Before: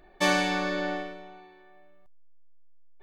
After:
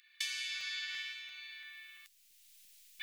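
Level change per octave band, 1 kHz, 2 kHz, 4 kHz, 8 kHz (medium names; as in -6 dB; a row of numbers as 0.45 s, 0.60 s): -33.0 dB, -10.0 dB, -4.0 dB, -6.0 dB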